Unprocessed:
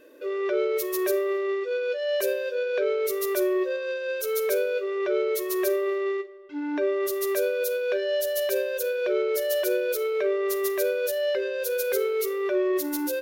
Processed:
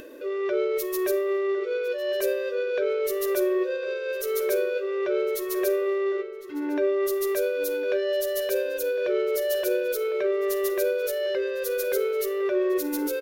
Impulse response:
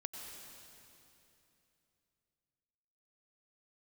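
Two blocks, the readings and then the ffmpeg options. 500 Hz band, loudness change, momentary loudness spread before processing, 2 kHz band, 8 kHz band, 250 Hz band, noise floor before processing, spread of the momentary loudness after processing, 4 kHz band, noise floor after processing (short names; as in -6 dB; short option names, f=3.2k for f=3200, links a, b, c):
+0.5 dB, 0.0 dB, 3 LU, -1.0 dB, -1.5 dB, +1.0 dB, -32 dBFS, 3 LU, -1.5 dB, -32 dBFS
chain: -filter_complex "[0:a]lowshelf=f=200:g=7.5,acompressor=mode=upward:threshold=-34dB:ratio=2.5,asplit=2[a][b];[b]adelay=1056,lowpass=f=3.6k:p=1,volume=-12.5dB,asplit=2[c][d];[d]adelay=1056,lowpass=f=3.6k:p=1,volume=0.35,asplit=2[e][f];[f]adelay=1056,lowpass=f=3.6k:p=1,volume=0.35,asplit=2[g][h];[h]adelay=1056,lowpass=f=3.6k:p=1,volume=0.35[i];[c][e][g][i]amix=inputs=4:normalize=0[j];[a][j]amix=inputs=2:normalize=0,volume=-1.5dB"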